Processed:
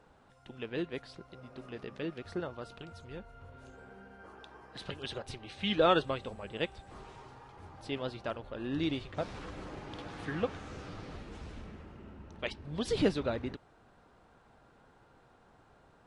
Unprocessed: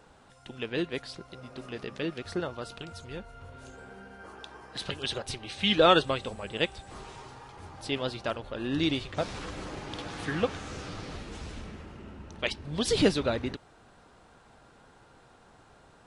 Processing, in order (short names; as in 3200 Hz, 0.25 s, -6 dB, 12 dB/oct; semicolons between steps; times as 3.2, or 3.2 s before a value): high shelf 3500 Hz -9.5 dB; gain -4.5 dB